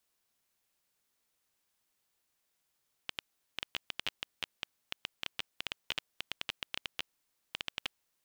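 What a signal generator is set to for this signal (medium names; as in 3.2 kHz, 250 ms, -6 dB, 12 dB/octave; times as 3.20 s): random clicks 9 per s -16.5 dBFS 5.12 s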